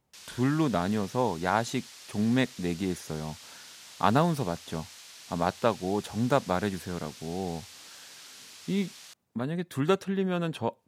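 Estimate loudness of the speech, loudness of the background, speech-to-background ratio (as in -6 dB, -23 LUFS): -30.0 LUFS, -46.0 LUFS, 16.0 dB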